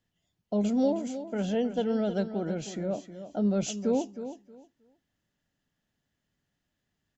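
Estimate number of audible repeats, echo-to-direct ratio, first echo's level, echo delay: 2, -11.5 dB, -11.5 dB, 315 ms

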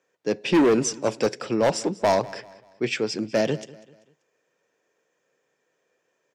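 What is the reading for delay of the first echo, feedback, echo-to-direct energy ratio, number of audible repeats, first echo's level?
194 ms, 40%, -19.5 dB, 2, -20.0 dB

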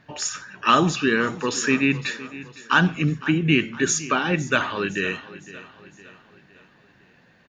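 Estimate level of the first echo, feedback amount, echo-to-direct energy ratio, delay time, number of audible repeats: -17.0 dB, 48%, -16.0 dB, 509 ms, 3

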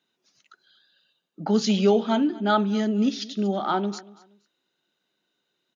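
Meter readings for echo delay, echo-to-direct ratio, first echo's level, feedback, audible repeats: 236 ms, -20.5 dB, -21.0 dB, 28%, 2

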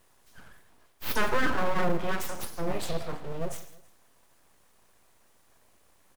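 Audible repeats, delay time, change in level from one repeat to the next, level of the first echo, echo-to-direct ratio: 2, 162 ms, -5.5 dB, -19.5 dB, -18.5 dB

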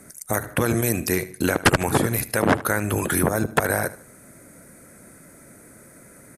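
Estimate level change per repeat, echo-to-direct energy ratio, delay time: -9.5 dB, -16.5 dB, 76 ms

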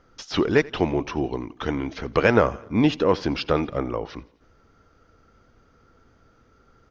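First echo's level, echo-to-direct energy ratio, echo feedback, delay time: -22.5 dB, -21.0 dB, 56%, 85 ms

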